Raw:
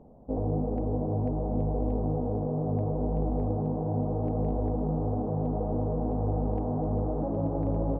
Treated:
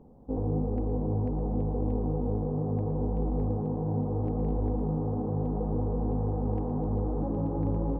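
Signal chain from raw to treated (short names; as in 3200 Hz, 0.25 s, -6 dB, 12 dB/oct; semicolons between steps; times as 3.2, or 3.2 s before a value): bell 640 Hz -13 dB 0.26 oct; split-band echo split 430 Hz, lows 0.234 s, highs 0.116 s, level -12 dB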